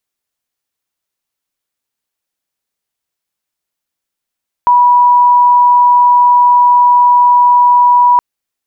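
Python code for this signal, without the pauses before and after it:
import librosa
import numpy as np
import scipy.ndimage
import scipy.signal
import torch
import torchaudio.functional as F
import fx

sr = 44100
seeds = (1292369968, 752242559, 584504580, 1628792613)

y = 10.0 ** (-4.0 / 20.0) * np.sin(2.0 * np.pi * (976.0 * (np.arange(round(3.52 * sr)) / sr)))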